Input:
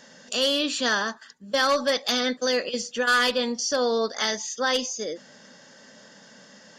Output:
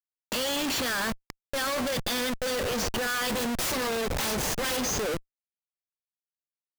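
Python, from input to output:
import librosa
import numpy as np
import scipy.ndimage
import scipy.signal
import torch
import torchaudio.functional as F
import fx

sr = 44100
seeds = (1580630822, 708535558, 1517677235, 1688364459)

y = fx.self_delay(x, sr, depth_ms=0.61, at=(3.29, 4.77))
y = fx.schmitt(y, sr, flips_db=-34.5)
y = y * 10.0 ** (-1.5 / 20.0)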